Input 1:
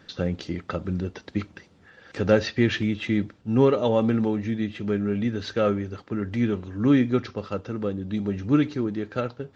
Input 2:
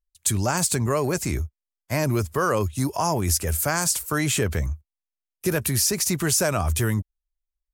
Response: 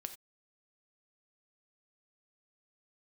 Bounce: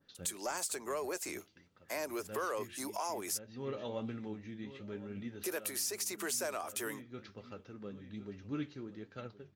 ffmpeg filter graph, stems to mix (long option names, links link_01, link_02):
-filter_complex "[0:a]flanger=delay=7.1:depth=7.9:regen=60:speed=1.2:shape=sinusoidal,adynamicequalizer=threshold=0.00562:dfrequency=1700:dqfactor=0.7:tfrequency=1700:tqfactor=0.7:attack=5:release=100:ratio=0.375:range=2.5:mode=boostabove:tftype=highshelf,volume=-15.5dB,asplit=3[link_01][link_02][link_03];[link_02]volume=-13dB[link_04];[link_03]volume=-15.5dB[link_05];[1:a]highpass=frequency=350:width=0.5412,highpass=frequency=350:width=1.3066,acompressor=threshold=-43dB:ratio=2,asoftclip=type=tanh:threshold=-25.5dB,volume=-0.5dB,asplit=3[link_06][link_07][link_08];[link_06]atrim=end=3.39,asetpts=PTS-STARTPTS,afade=type=out:start_time=3.386:duration=0.004:curve=hsin[link_09];[link_07]atrim=start=3.39:end=4.96,asetpts=PTS-STARTPTS,volume=0[link_10];[link_08]atrim=start=4.96,asetpts=PTS-STARTPTS,afade=type=in:duration=0.004:curve=hsin[link_11];[link_09][link_10][link_11]concat=n=3:v=0:a=1,asplit=2[link_12][link_13];[link_13]apad=whole_len=421408[link_14];[link_01][link_14]sidechaincompress=threshold=-55dB:ratio=8:attack=6.4:release=264[link_15];[2:a]atrim=start_sample=2205[link_16];[link_04][link_16]afir=irnorm=-1:irlink=0[link_17];[link_05]aecho=0:1:1069:1[link_18];[link_15][link_12][link_17][link_18]amix=inputs=4:normalize=0"